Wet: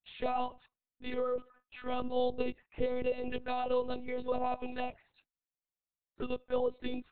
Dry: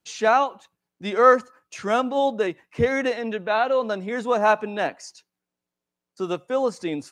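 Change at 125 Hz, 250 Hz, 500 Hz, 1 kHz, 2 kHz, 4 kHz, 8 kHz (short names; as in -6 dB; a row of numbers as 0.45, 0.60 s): -14.0 dB, -11.0 dB, -12.0 dB, -14.5 dB, -19.5 dB, -11.5 dB, under -40 dB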